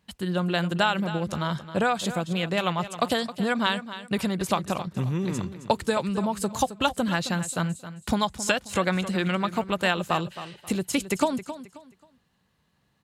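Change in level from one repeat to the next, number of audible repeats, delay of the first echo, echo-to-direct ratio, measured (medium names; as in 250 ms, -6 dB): -11.0 dB, 3, 267 ms, -12.5 dB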